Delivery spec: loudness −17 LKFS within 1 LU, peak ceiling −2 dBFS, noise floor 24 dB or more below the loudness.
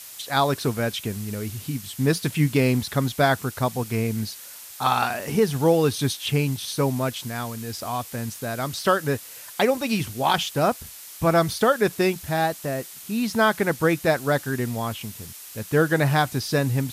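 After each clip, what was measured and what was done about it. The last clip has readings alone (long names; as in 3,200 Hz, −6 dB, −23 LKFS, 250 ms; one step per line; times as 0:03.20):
background noise floor −42 dBFS; target noise floor −48 dBFS; integrated loudness −24.0 LKFS; sample peak −7.0 dBFS; target loudness −17.0 LKFS
→ broadband denoise 6 dB, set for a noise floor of −42 dBFS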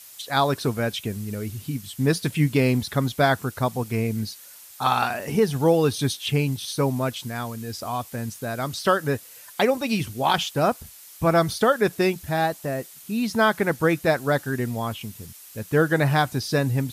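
background noise floor −46 dBFS; target noise floor −48 dBFS
→ broadband denoise 6 dB, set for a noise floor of −46 dBFS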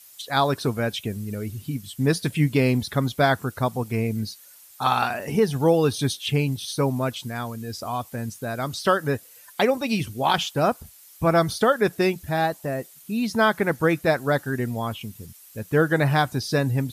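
background noise floor −49 dBFS; integrated loudness −24.0 LKFS; sample peak −7.0 dBFS; target loudness −17.0 LKFS
→ level +7 dB
brickwall limiter −2 dBFS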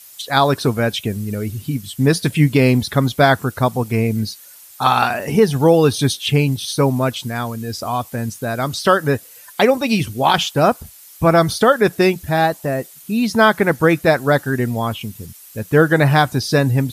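integrated loudness −17.0 LKFS; sample peak −2.0 dBFS; background noise floor −42 dBFS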